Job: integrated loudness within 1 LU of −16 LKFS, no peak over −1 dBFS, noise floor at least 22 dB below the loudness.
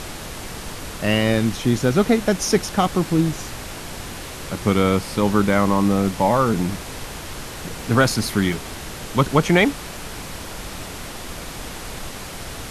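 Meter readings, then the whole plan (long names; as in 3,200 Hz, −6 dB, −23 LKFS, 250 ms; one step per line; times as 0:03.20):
number of dropouts 2; longest dropout 1.2 ms; background noise floor −34 dBFS; target noise floor −42 dBFS; integrated loudness −20.0 LKFS; sample peak −2.0 dBFS; target loudness −16.0 LKFS
→ repair the gap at 0:05.34/0:08.53, 1.2 ms
noise reduction from a noise print 8 dB
level +4 dB
brickwall limiter −1 dBFS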